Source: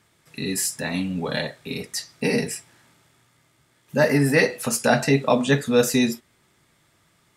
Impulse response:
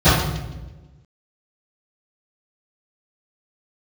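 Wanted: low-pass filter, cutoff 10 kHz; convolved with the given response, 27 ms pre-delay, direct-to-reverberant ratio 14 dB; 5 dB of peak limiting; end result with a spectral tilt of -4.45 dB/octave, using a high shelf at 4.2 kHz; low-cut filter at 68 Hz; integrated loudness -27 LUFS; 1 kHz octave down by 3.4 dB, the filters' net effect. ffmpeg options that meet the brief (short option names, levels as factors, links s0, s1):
-filter_complex "[0:a]highpass=68,lowpass=10000,equalizer=f=1000:t=o:g=-5,highshelf=f=4200:g=3,alimiter=limit=0.282:level=0:latency=1,asplit=2[s0][s1];[1:a]atrim=start_sample=2205,adelay=27[s2];[s1][s2]afir=irnorm=-1:irlink=0,volume=0.01[s3];[s0][s3]amix=inputs=2:normalize=0,volume=0.668"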